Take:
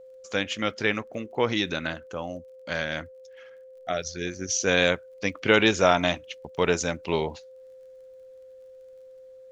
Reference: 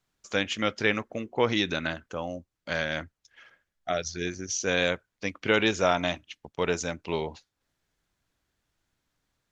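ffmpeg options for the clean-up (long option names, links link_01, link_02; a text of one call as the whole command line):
ffmpeg -i in.wav -af "adeclick=threshold=4,bandreject=frequency=520:width=30,asetnsamples=nb_out_samples=441:pad=0,asendcmd='4.41 volume volume -4dB',volume=0dB" out.wav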